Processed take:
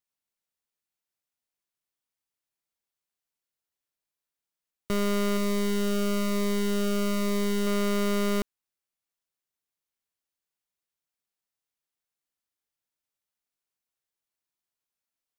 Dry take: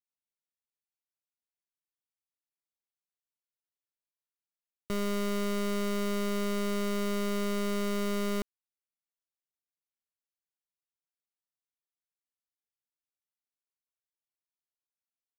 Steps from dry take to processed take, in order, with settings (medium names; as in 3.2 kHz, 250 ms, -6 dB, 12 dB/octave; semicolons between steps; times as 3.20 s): 5.37–7.67 s: Shepard-style phaser falling 1.1 Hz; trim +5 dB